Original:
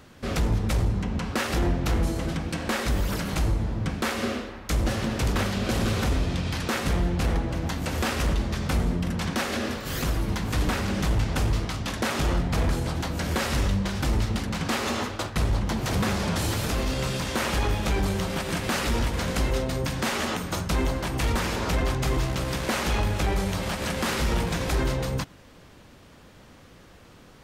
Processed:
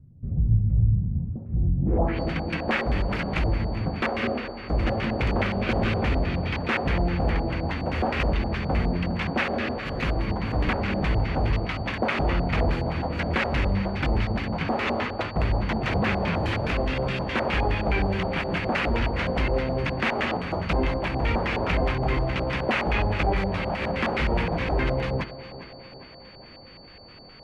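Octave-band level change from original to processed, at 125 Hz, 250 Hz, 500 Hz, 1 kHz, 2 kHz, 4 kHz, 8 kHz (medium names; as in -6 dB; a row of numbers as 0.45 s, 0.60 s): +1.0 dB, +0.5 dB, +3.0 dB, +2.5 dB, +3.0 dB, -3.5 dB, under -15 dB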